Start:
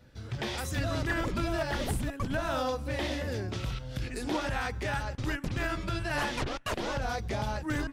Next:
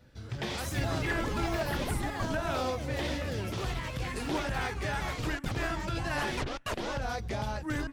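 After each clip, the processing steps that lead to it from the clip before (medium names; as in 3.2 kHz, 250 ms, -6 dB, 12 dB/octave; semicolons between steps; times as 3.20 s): ever faster or slower copies 171 ms, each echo +4 st, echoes 3, each echo -6 dB; trim -1.5 dB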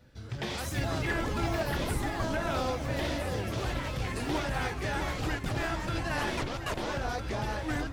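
echo whose repeats swap between lows and highs 656 ms, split 1.1 kHz, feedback 70%, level -6.5 dB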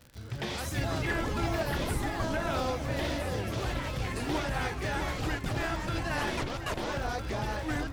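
crackle 110 per s -39 dBFS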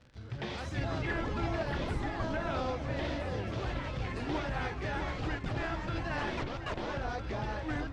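distance through air 130 m; trim -2.5 dB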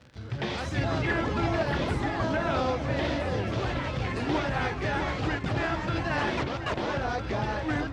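high-pass 71 Hz; trim +7 dB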